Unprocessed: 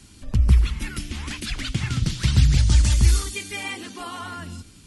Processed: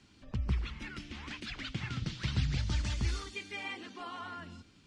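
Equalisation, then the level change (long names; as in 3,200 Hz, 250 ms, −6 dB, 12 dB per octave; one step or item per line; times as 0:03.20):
high-frequency loss of the air 150 metres
low-shelf EQ 76 Hz −11 dB
low-shelf EQ 360 Hz −3.5 dB
−7.0 dB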